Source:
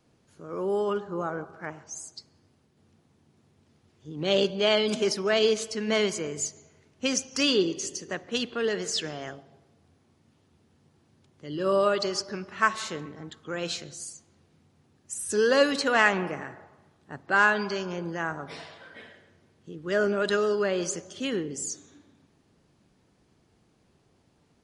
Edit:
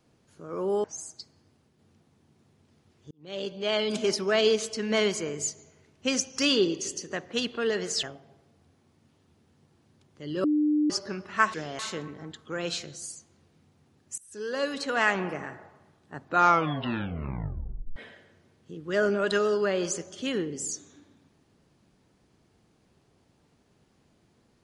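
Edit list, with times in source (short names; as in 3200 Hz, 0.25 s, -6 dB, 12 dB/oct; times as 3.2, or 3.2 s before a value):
0.84–1.82 cut
4.09–5.12 fade in
9.01–9.26 move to 12.77
11.67–12.13 bleep 300 Hz -20.5 dBFS
15.16–16.45 fade in, from -24 dB
17.18 tape stop 1.76 s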